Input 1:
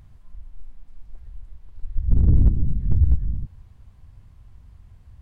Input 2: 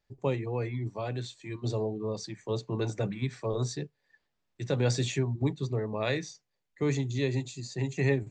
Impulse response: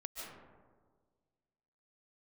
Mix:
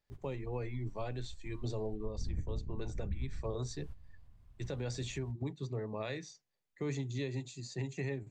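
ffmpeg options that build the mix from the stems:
-filter_complex "[0:a]acompressor=mode=upward:threshold=-18dB:ratio=2.5,adelay=100,volume=-15.5dB,asplit=2[a][b];[b]volume=-12dB[c];[1:a]volume=-4.5dB,asplit=2[d][e];[e]apad=whole_len=234306[f];[a][f]sidechaingate=range=-22dB:threshold=-49dB:ratio=16:detection=peak[g];[2:a]atrim=start_sample=2205[h];[c][h]afir=irnorm=-1:irlink=0[i];[g][d][i]amix=inputs=3:normalize=0,alimiter=level_in=4dB:limit=-24dB:level=0:latency=1:release=338,volume=-4dB"

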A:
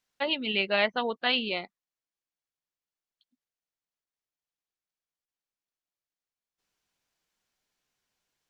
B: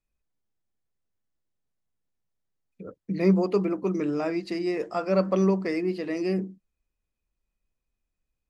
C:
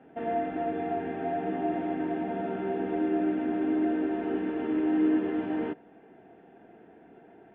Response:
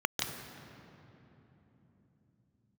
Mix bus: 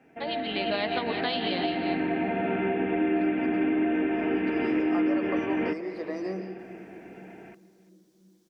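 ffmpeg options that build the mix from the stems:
-filter_complex "[0:a]volume=-8.5dB,asplit=3[a][b][c];[b]volume=-15dB[d];[c]volume=-11.5dB[e];[1:a]alimiter=limit=-21dB:level=0:latency=1:release=287,bandpass=f=970:t=q:w=0.87:csg=0,volume=-9.5dB,afade=t=in:st=4.55:d=0.22:silence=0.251189,asplit=2[f][g];[g]volume=-12dB[h];[2:a]lowpass=f=2.4k:t=q:w=4.2,volume=-6.5dB,asplit=2[i][j];[j]volume=-20dB[k];[3:a]atrim=start_sample=2205[l];[d][h]amix=inputs=2:normalize=0[m];[m][l]afir=irnorm=-1:irlink=0[n];[e][k]amix=inputs=2:normalize=0,aecho=0:1:347:1[o];[a][f][i][n][o]amix=inputs=5:normalize=0,bass=f=250:g=3,treble=f=4k:g=9,dynaudnorm=f=440:g=3:m=11dB,alimiter=limit=-17.5dB:level=0:latency=1:release=358"

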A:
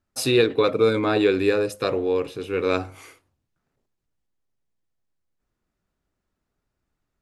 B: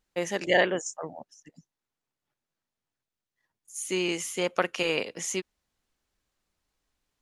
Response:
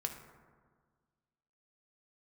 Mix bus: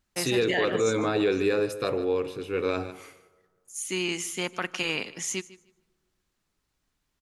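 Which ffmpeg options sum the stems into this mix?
-filter_complex "[0:a]volume=-5.5dB,asplit=3[a][b][c];[b]volume=-11dB[d];[c]volume=-13.5dB[e];[1:a]equalizer=f=520:w=1.8:g=-10,volume=0.5dB,asplit=3[f][g][h];[g]volume=-19dB[i];[h]volume=-19dB[j];[2:a]atrim=start_sample=2205[k];[d][i]amix=inputs=2:normalize=0[l];[l][k]afir=irnorm=-1:irlink=0[m];[e][j]amix=inputs=2:normalize=0,aecho=0:1:152|304|456:1|0.18|0.0324[n];[a][f][m][n]amix=inputs=4:normalize=0,alimiter=limit=-15.5dB:level=0:latency=1:release=15"

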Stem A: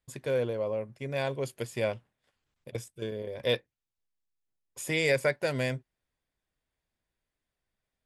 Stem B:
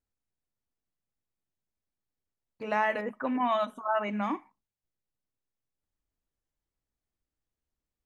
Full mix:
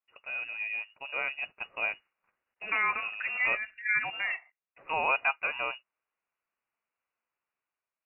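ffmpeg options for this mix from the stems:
-filter_complex "[0:a]dynaudnorm=f=120:g=9:m=7dB,volume=-4.5dB,asplit=2[a][b];[1:a]agate=range=-11dB:threshold=-49dB:ratio=16:detection=peak,volume=3dB[c];[b]apad=whole_len=355299[d];[c][d]sidechaincompress=threshold=-27dB:ratio=8:attack=9.8:release=462[e];[a][e]amix=inputs=2:normalize=0,highpass=f=790:p=1,lowpass=f=2.6k:t=q:w=0.5098,lowpass=f=2.6k:t=q:w=0.6013,lowpass=f=2.6k:t=q:w=0.9,lowpass=f=2.6k:t=q:w=2.563,afreqshift=-3000"

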